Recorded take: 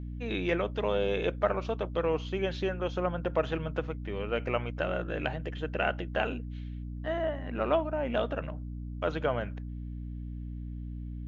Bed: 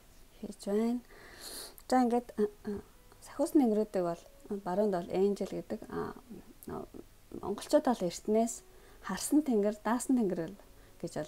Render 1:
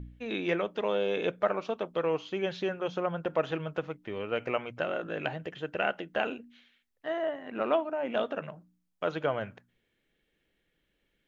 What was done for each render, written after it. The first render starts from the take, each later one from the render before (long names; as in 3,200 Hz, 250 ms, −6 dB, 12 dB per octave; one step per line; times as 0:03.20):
hum removal 60 Hz, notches 5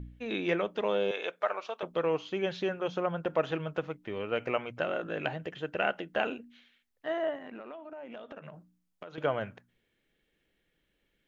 0:01.11–0:01.83: high-pass filter 660 Hz
0:07.37–0:09.18: downward compressor 16 to 1, threshold −40 dBFS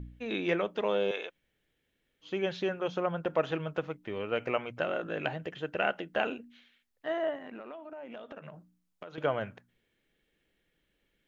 0:01.26–0:02.26: fill with room tone, crossfade 0.10 s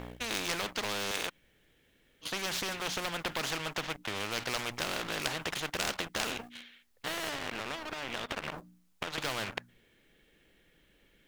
leveller curve on the samples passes 2
every bin compressed towards the loudest bin 4 to 1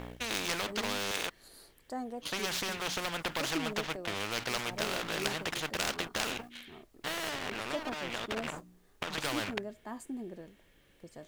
mix in bed −11.5 dB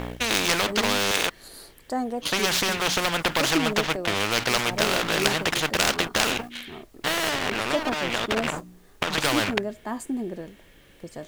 level +11 dB